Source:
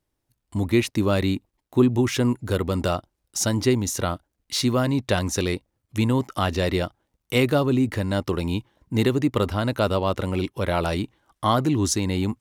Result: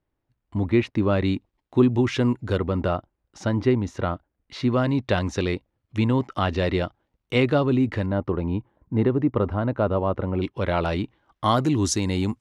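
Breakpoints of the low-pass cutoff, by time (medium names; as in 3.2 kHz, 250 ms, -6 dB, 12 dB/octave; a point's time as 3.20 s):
2.4 kHz
from 1.25 s 4 kHz
from 2.58 s 2.1 kHz
from 4.73 s 3.5 kHz
from 8.06 s 1.3 kHz
from 10.42 s 3.5 kHz
from 11.44 s 8.6 kHz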